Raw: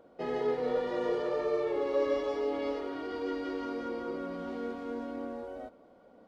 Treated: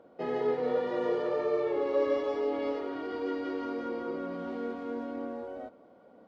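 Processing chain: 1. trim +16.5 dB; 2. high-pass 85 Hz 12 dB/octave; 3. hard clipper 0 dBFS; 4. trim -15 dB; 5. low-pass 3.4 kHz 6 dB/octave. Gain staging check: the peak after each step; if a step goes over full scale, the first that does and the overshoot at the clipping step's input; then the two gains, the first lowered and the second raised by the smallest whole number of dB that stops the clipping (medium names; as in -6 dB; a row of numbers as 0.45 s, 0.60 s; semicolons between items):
-2.5 dBFS, -2.5 dBFS, -2.5 dBFS, -17.5 dBFS, -17.5 dBFS; nothing clips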